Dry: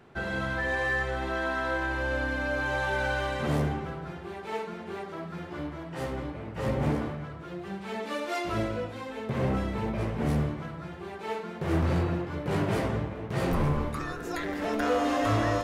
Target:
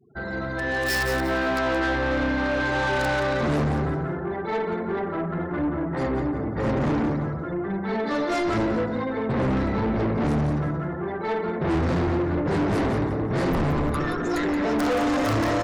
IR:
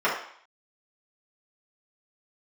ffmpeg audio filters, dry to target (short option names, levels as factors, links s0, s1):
-filter_complex "[0:a]asuperstop=centerf=2800:order=20:qfactor=2.3,acrossover=split=1100[s0][s1];[s0]acrusher=bits=4:mode=log:mix=0:aa=0.000001[s2];[s1]aeval=exprs='(mod(20*val(0)+1,2)-1)/20':c=same[s3];[s2][s3]amix=inputs=2:normalize=0,afftfilt=real='re*gte(hypot(re,im),0.00631)':imag='im*gte(hypot(re,im),0.00631)':win_size=1024:overlap=0.75,asplit=2[s4][s5];[s5]aecho=0:1:175|350|525:0.355|0.0887|0.0222[s6];[s4][s6]amix=inputs=2:normalize=0,adynamicequalizer=threshold=0.00708:dfrequency=290:dqfactor=1.6:tfrequency=290:tqfactor=1.6:attack=5:release=100:ratio=0.375:range=3.5:mode=boostabove:tftype=bell,dynaudnorm=f=580:g=3:m=3.16,asoftclip=type=tanh:threshold=0.0944"